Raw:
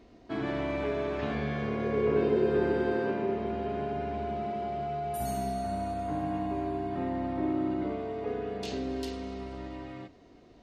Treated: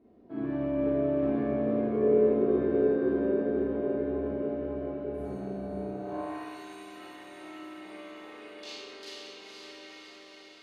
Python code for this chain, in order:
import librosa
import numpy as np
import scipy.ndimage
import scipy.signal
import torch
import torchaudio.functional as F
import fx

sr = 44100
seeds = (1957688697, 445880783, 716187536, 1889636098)

y = fx.echo_diffused(x, sr, ms=498, feedback_pct=65, wet_db=-4)
y = fx.filter_sweep_bandpass(y, sr, from_hz=280.0, to_hz=3500.0, start_s=5.91, end_s=6.56, q=0.71)
y = fx.rev_schroeder(y, sr, rt60_s=0.75, comb_ms=29, drr_db=-6.5)
y = F.gain(torch.from_numpy(y), -6.0).numpy()